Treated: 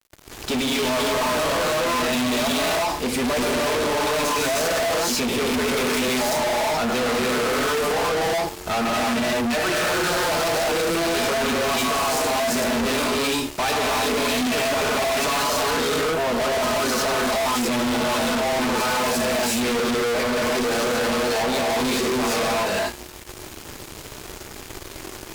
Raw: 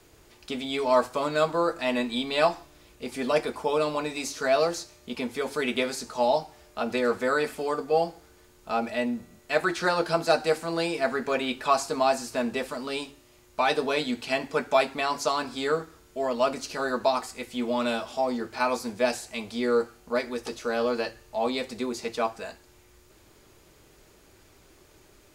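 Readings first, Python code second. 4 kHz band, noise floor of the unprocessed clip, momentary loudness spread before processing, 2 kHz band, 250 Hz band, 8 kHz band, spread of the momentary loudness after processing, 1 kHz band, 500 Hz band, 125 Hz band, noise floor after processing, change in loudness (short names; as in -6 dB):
+10.5 dB, -57 dBFS, 9 LU, +8.0 dB, +7.0 dB, +14.0 dB, 5 LU, +5.5 dB, +4.0 dB, +9.0 dB, -39 dBFS, +6.0 dB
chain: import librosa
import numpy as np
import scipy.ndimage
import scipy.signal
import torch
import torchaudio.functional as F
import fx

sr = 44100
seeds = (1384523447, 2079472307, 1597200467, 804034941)

y = fx.rev_gated(x, sr, seeds[0], gate_ms=390, shape='rising', drr_db=-6.5)
y = fx.fuzz(y, sr, gain_db=40.0, gate_db=-49.0)
y = F.gain(torch.from_numpy(y), -8.0).numpy()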